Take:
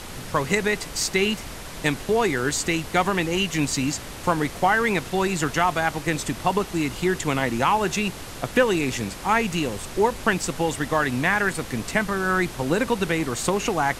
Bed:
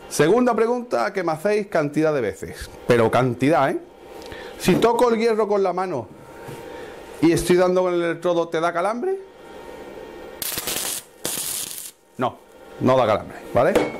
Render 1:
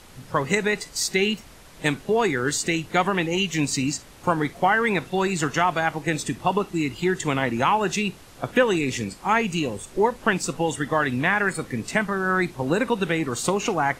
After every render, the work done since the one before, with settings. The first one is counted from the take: noise print and reduce 11 dB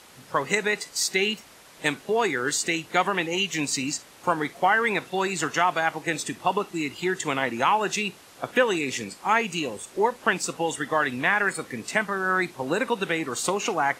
high-pass 410 Hz 6 dB/octave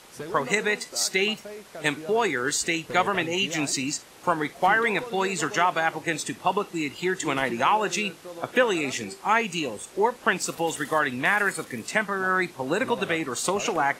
add bed -20 dB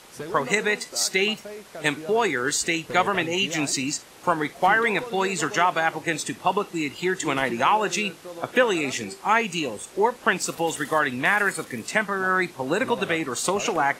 trim +1.5 dB

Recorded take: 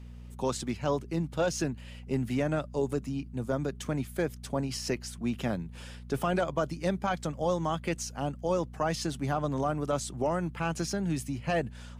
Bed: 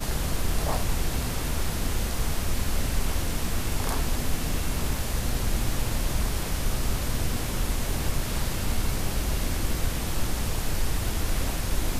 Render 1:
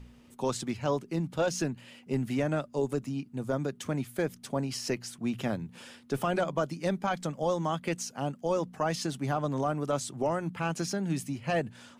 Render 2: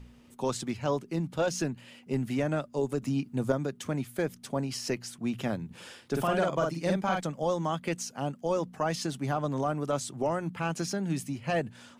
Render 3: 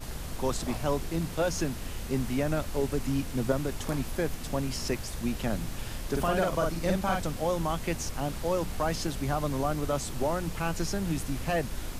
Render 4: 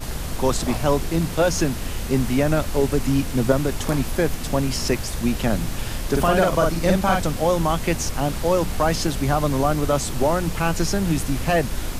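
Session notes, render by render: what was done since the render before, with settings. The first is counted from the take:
de-hum 60 Hz, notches 3
3.02–3.52 s: gain +5 dB; 5.66–7.21 s: doubling 48 ms -2.5 dB
add bed -10 dB
trim +9 dB

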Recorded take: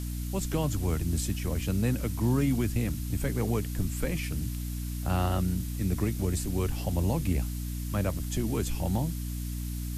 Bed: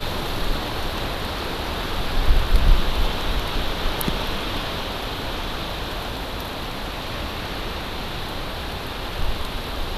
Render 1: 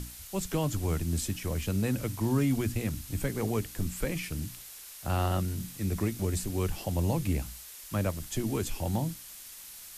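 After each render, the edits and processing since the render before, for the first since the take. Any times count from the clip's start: hum notches 60/120/180/240/300 Hz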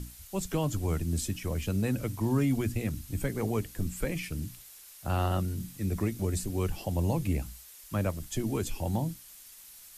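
noise reduction 6 dB, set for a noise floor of -47 dBFS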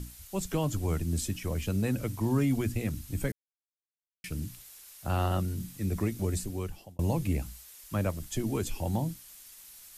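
3.32–4.24 s: mute; 6.33–6.99 s: fade out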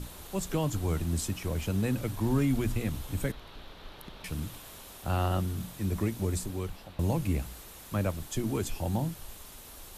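add bed -23 dB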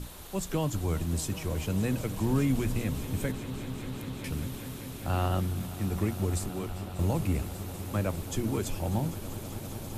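echo with a slow build-up 197 ms, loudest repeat 5, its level -17 dB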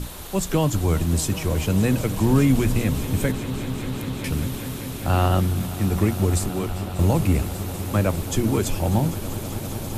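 trim +9 dB

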